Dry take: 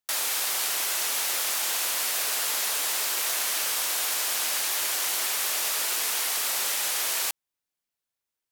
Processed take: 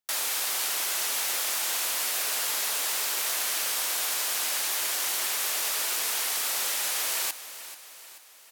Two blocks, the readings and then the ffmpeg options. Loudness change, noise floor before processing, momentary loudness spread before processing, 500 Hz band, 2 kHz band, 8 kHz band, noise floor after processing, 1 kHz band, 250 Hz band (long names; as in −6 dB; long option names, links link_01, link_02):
−1.5 dB, below −85 dBFS, 0 LU, −1.0 dB, −1.5 dB, −1.5 dB, −48 dBFS, −1.5 dB, −1.5 dB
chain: -af "aecho=1:1:435|870|1305|1740|2175:0.2|0.104|0.054|0.0281|0.0146,volume=-1.5dB"